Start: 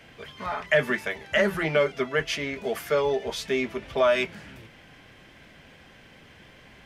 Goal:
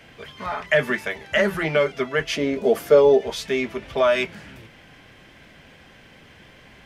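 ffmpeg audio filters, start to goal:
-filter_complex "[0:a]asettb=1/sr,asplit=3[a][b][c];[a]atrim=end=2.364[d];[b]atrim=start=2.36:end=3.21,asetpts=PTS-STARTPTS,afade=t=in:d=0.004:c=qsin,afade=t=out:st=0.846:d=0.004:c=qsin,equalizer=f=250:t=o:w=1:g=7,equalizer=f=500:t=o:w=1:g=8,equalizer=f=2k:t=o:w=1:g=-5[e];[c]atrim=start=3.206[f];[d][e]acrossfade=d=0.004:c1=hsin:c2=qsin[g];[g][f]acrossfade=d=0.004:c1=qsin:c2=hsin,volume=2.5dB"

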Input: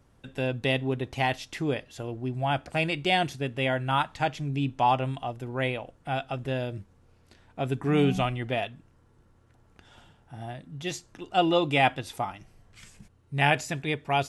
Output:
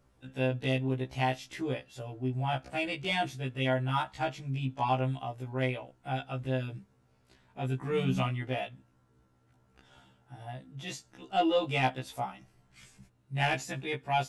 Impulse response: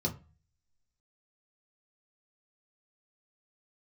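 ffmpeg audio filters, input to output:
-af "asoftclip=type=tanh:threshold=-12dB,afftfilt=real='re*1.73*eq(mod(b,3),0)':imag='im*1.73*eq(mod(b,3),0)':win_size=2048:overlap=0.75,volume=-2.5dB"

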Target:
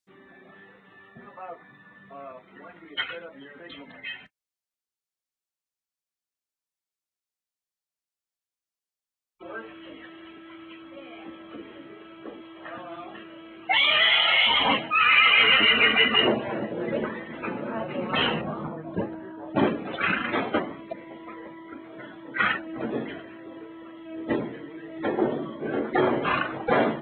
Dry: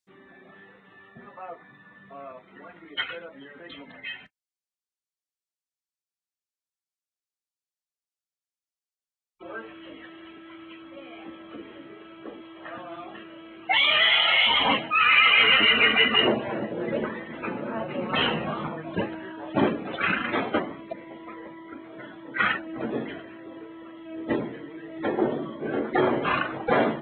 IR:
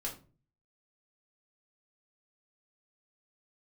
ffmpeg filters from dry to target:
-filter_complex "[0:a]asettb=1/sr,asplit=3[a][b][c];[a]atrim=end=18.414[d];[b]atrim=start=18.41:end=19.56,asetpts=PTS-STARTPTS,afade=t=in:d=0.004:c=qsin,afade=t=out:st=1.146:d=0.004:c=qsin,equalizer=f=2.8k:t=o:w=1.7:g=-14[e];[c]atrim=start=19.556[f];[d][e]acrossfade=d=0.004:c1=hsin:c2=qsin[g];[g][f]acrossfade=d=0.004:c1=qsin:c2=hsin"

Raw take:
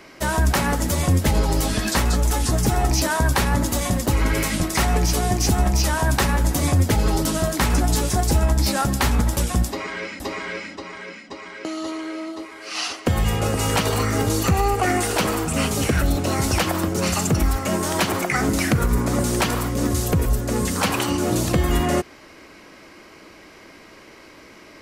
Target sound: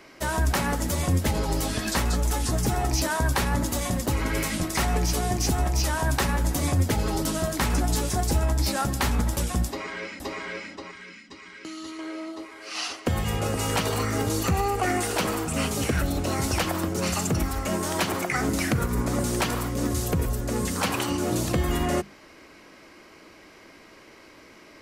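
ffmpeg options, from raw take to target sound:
-filter_complex "[0:a]asettb=1/sr,asplit=3[a][b][c];[a]atrim=end=10.914[d];[b]atrim=start=10.91:end=11.99,asetpts=PTS-STARTPTS,afade=t=in:d=0.004:c=qsin,afade=t=out:st=1.076:d=0.004:c=qsin,equalizer=f=640:w=1.1:g=-14[e];[c]atrim=start=11.986[f];[d][e]acrossfade=d=0.004:c1=hsin:c2=qsin[g];[g][f]acrossfade=d=0.004:c1=qsin:c2=hsin,bandreject=f=50:t=h:w=6,bandreject=f=100:t=h:w=6,bandreject=f=150:t=h:w=6,bandreject=f=200:t=h:w=6,volume=-4.5dB"

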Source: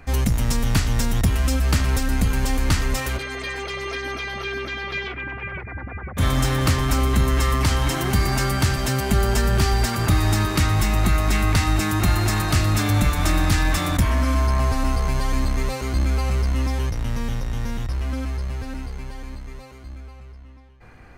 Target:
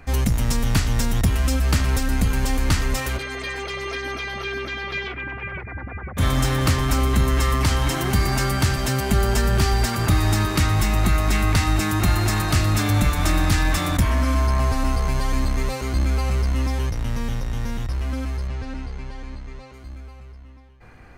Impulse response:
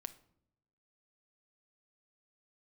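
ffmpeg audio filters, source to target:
-filter_complex "[0:a]asettb=1/sr,asplit=3[a][b][c];[a]atrim=end=18.474[d];[b]atrim=start=18.47:end=19.74,asetpts=PTS-STARTPTS,afade=t=in:d=0.004:c=qsin,afade=t=out:st=1.266:d=0.004:c=qsin,lowpass=5.9k[e];[c]atrim=start=19.736[f];[d][e]acrossfade=d=0.004:c1=hsin:c2=qsin[g];[g][f]acrossfade=d=0.004:c1=qsin:c2=hsin"

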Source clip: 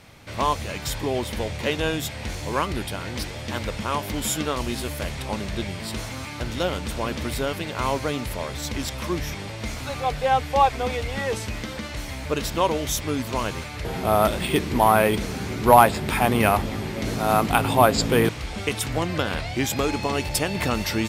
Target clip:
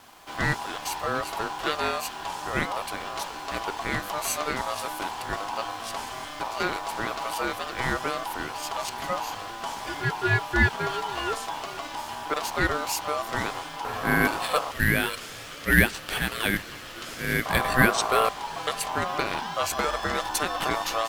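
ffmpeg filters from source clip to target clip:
-filter_complex "[0:a]asettb=1/sr,asplit=3[a][b][c];[a]atrim=end=14.714[d];[b]atrim=start=14.71:end=17.46,asetpts=PTS-STARTPTS,afade=t=in:d=0.004:c=qsin,afade=t=out:st=2.746:d=0.004:c=qsin,highpass=740[e];[c]atrim=start=17.456[f];[d][e]acrossfade=d=0.004:c1=hsin:c2=qsin[g];[g][f]acrossfade=d=0.004:c1=qsin:c2=hsin,aeval=exprs='val(0)*sin(2*PI*900*n/s)':c=same,acrusher=bits=8:mix=0:aa=0.000001"

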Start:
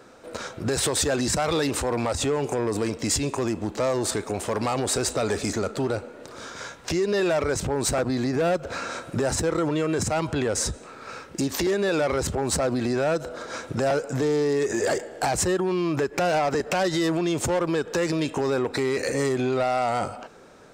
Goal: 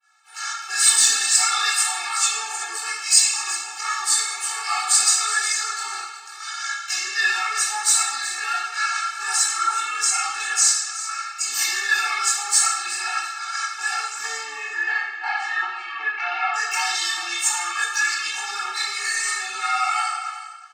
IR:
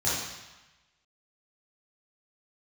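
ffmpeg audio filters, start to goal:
-filter_complex "[0:a]asettb=1/sr,asplit=3[a][b][c];[a]atrim=end=14.374[d];[b]atrim=start=14.37:end=16.54,asetpts=PTS-STARTPTS,afade=t=in:d=0.004:c=qsin,afade=t=out:st=2.166:d=0.004:c=qsin,lowpass=f=3.1k:w=0.5412,lowpass=f=3.1k:w=1.3066[e];[c]atrim=start=16.536[f];[d][e]acrossfade=d=0.004:c1=hsin:c2=qsin[g];[g][f]acrossfade=d=0.004:c1=qsin:c2=hsin,agate=range=-33dB:threshold=-40dB:ratio=3:detection=peak,highpass=f=1.2k:w=0.5412,highpass=f=1.2k:w=1.3066,aeval=exprs='0.133*(abs(mod(val(0)/0.133+3,4)-2)-1)':c=same,flanger=delay=17.5:depth=7.1:speed=0.45,aecho=1:1:369:0.2[h];[1:a]atrim=start_sample=2205,asetrate=52920,aresample=44100[i];[h][i]afir=irnorm=-1:irlink=0,afftfilt=real='re*eq(mod(floor(b*sr/1024/230),2),1)':imag='im*eq(mod(floor(b*sr/1024/230),2),1)':win_size=1024:overlap=0.75,volume=6.5dB"

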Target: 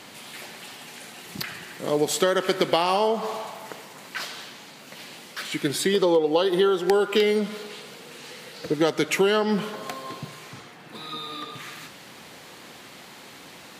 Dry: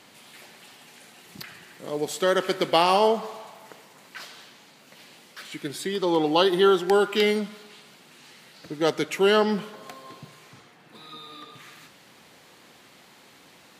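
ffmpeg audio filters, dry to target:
-filter_complex "[0:a]asettb=1/sr,asplit=3[a][b][c];[a]atrim=end=5.944[d];[b]atrim=start=5.94:end=8.74,asetpts=PTS-STARTPTS,afade=t=in:d=0.004:c=qsin,afade=t=out:st=2.796:d=0.004:c=qsin,equalizer=f=480:w=6.5:g=13[e];[c]atrim=start=8.736[f];[d][e]acrossfade=d=0.004:c1=hsin:c2=qsin[g];[g][f]acrossfade=d=0.004:c1=qsin:c2=hsin,acompressor=threshold=-25dB:ratio=12,volume=8dB"

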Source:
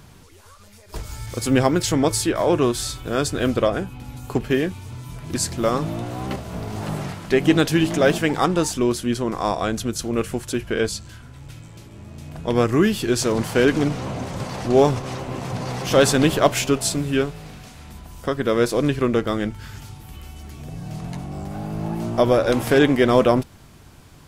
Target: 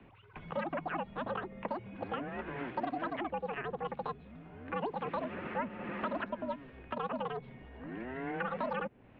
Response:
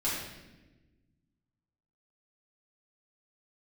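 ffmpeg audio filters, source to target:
-filter_complex "[0:a]asetrate=116424,aresample=44100,highpass=f=170:t=q:w=0.5412,highpass=f=170:t=q:w=1.307,lowpass=f=2.9k:t=q:w=0.5176,lowpass=f=2.9k:t=q:w=0.7071,lowpass=f=2.9k:t=q:w=1.932,afreqshift=-130,acrossover=split=210|550|2000[a][b][c][d];[a]acompressor=threshold=-42dB:ratio=4[e];[b]acompressor=threshold=-30dB:ratio=4[f];[c]acompressor=threshold=-31dB:ratio=4[g];[d]acompressor=threshold=-43dB:ratio=4[h];[e][f][g][h]amix=inputs=4:normalize=0,volume=-9dB"

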